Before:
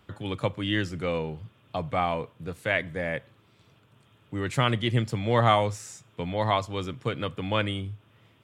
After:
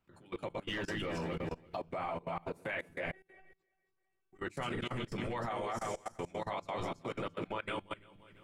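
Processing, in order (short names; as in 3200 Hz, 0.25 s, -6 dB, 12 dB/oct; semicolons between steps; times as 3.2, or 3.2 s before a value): regenerating reverse delay 0.17 s, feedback 51%, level -4 dB; in parallel at 0 dB: compressor 5:1, threshold -37 dBFS, peak gain reduction 19.5 dB; on the sum: resonator 170 Hz, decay 0.64 s, harmonics all, mix 80%; reverb RT60 0.20 s, pre-delay 3 ms, DRR 2 dB; limiter -24 dBFS, peak gain reduction 10 dB; bell 3300 Hz -9.5 dB 0.21 oct; 0.68–1.77 sample leveller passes 1; harmonic-percussive split harmonic -14 dB; 3.12–4.39 resonator 380 Hz, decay 0.17 s, harmonics all, mix 100%; level quantiser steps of 22 dB; gain +7 dB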